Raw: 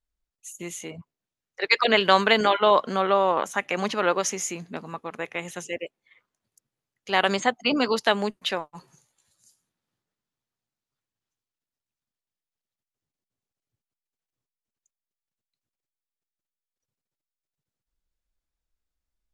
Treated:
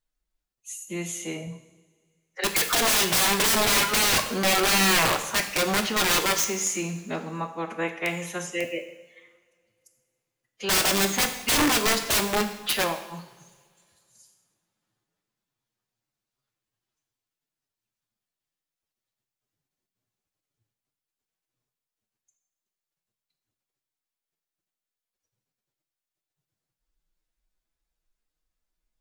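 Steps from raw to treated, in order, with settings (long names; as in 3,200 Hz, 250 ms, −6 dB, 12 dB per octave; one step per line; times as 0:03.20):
phase-vocoder stretch with locked phases 1.5×
wrap-around overflow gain 19.5 dB
coupled-rooms reverb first 0.84 s, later 2.5 s, from −20 dB, DRR 5.5 dB
level +2.5 dB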